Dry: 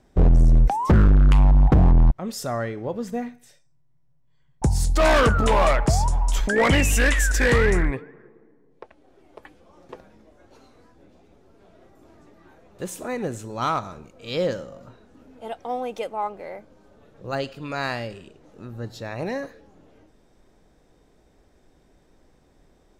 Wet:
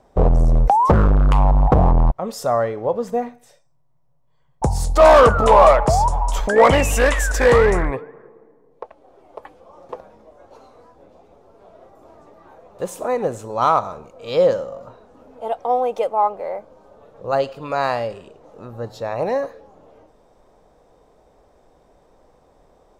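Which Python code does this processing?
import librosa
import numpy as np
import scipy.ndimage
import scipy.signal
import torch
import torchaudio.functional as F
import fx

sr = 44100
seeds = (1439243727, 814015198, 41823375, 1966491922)

y = fx.band_shelf(x, sr, hz=740.0, db=10.0, octaves=1.7)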